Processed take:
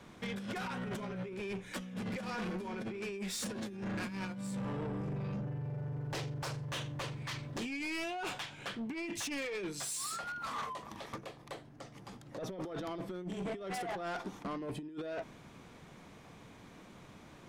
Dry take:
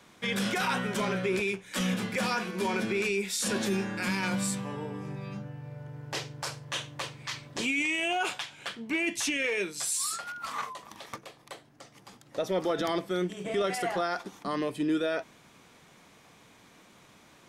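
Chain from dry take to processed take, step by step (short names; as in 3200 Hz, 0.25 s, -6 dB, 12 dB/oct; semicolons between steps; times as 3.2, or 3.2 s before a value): tilt -2 dB/oct; negative-ratio compressor -31 dBFS, ratio -0.5; soft clip -32 dBFS, distortion -10 dB; gain -2.5 dB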